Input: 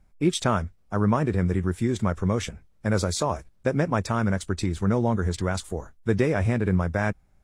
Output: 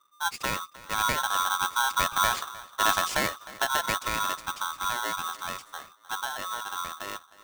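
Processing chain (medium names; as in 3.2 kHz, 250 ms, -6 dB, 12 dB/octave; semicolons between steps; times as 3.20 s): Doppler pass-by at 2.56 s, 12 m/s, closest 13 m; treble shelf 8 kHz -11.5 dB; band-stop 470 Hz, Q 12; on a send: filtered feedback delay 308 ms, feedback 38%, low-pass 1.8 kHz, level -18 dB; on the sum: polarity switched at an audio rate 1.2 kHz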